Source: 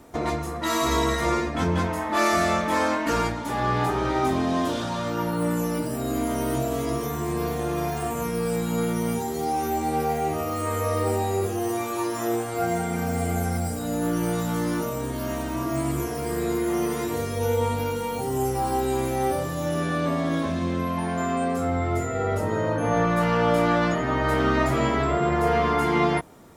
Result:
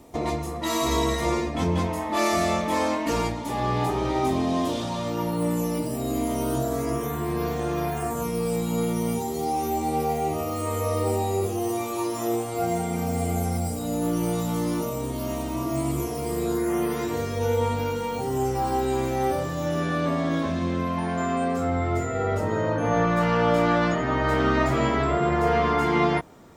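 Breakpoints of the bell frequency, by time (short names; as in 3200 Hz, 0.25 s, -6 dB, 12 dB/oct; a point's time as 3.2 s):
bell -12 dB 0.42 oct
6.35 s 1500 Hz
7.68 s 13000 Hz
8.28 s 1600 Hz
16.43 s 1600 Hz
17.05 s 11000 Hz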